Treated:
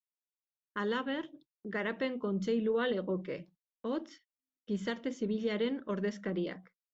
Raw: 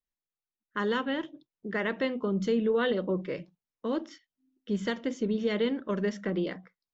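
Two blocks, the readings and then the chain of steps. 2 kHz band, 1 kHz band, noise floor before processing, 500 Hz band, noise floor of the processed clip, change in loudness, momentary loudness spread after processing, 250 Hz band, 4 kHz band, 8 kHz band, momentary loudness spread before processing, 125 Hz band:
-4.5 dB, -4.5 dB, under -85 dBFS, -4.5 dB, under -85 dBFS, -4.5 dB, 12 LU, -4.5 dB, -4.5 dB, n/a, 12 LU, -4.5 dB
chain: gate -55 dBFS, range -25 dB; gain -4.5 dB

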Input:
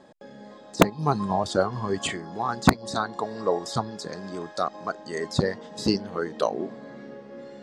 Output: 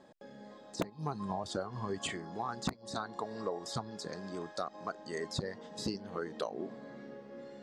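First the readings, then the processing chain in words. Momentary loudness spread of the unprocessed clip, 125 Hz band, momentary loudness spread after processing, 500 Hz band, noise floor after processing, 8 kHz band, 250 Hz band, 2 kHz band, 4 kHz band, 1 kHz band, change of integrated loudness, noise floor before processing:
19 LU, -12.5 dB, 11 LU, -12.0 dB, -56 dBFS, -9.0 dB, -13.0 dB, -13.0 dB, -9.5 dB, -12.5 dB, -12.5 dB, -47 dBFS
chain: compressor 6:1, threshold -26 dBFS, peak gain reduction 15 dB; gain -6.5 dB

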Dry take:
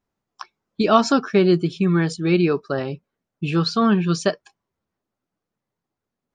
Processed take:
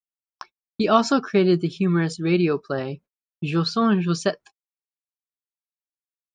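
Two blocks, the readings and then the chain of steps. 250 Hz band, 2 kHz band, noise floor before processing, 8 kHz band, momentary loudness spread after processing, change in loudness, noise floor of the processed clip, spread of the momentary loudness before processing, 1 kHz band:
-2.0 dB, -2.0 dB, -85 dBFS, -2.0 dB, 14 LU, -2.0 dB, under -85 dBFS, 14 LU, -2.0 dB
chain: gate -42 dBFS, range -40 dB; gain -2 dB

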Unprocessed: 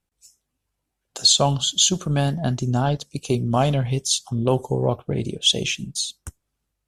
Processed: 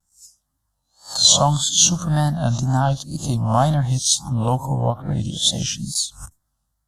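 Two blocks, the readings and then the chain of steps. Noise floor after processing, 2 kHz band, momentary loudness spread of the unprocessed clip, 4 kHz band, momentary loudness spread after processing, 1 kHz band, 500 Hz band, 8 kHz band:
-74 dBFS, -2.0 dB, 10 LU, +1.0 dB, 11 LU, +4.5 dB, -2.0 dB, +5.0 dB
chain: spectral swells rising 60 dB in 0.35 s; fixed phaser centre 1000 Hz, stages 4; wow and flutter 110 cents; ending taper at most 320 dB/s; gain +4.5 dB

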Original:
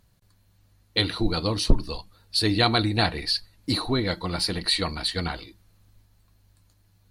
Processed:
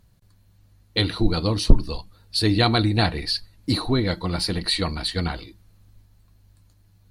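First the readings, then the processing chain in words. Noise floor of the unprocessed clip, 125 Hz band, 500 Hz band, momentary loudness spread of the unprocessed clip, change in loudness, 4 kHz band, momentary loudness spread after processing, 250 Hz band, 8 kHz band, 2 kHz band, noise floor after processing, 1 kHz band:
-62 dBFS, +5.0 dB, +2.0 dB, 8 LU, +2.0 dB, 0.0 dB, 9 LU, +3.5 dB, 0.0 dB, 0.0 dB, -57 dBFS, +1.0 dB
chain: low shelf 350 Hz +5.5 dB

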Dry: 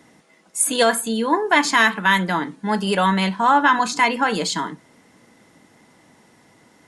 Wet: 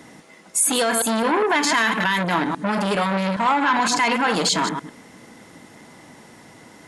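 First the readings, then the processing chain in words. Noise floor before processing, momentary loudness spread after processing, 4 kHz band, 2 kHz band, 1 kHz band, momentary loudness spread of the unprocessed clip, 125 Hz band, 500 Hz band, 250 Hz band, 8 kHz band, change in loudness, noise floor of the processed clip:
-55 dBFS, 5 LU, 0.0 dB, -2.5 dB, -2.0 dB, 8 LU, -1.0 dB, -0.5 dB, -0.5 dB, +2.0 dB, -1.5 dB, -47 dBFS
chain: reverse delay 0.102 s, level -10.5 dB; maximiser +15.5 dB; core saturation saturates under 900 Hz; gain -8 dB

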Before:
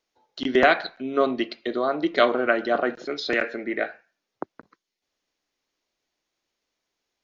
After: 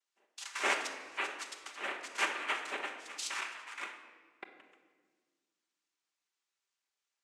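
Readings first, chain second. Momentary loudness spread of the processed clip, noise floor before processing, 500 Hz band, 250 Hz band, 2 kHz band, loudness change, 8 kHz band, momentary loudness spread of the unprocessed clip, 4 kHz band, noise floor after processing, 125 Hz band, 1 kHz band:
21 LU, -83 dBFS, -23.5 dB, -26.5 dB, -10.0 dB, -13.0 dB, n/a, 12 LU, -7.5 dB, under -85 dBFS, under -25 dB, -13.0 dB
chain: steep high-pass 810 Hz 48 dB/oct; dynamic EQ 2000 Hz, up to -4 dB, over -37 dBFS, Q 2.5; noise vocoder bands 4; shoebox room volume 1600 m³, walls mixed, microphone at 1.2 m; gain -9 dB

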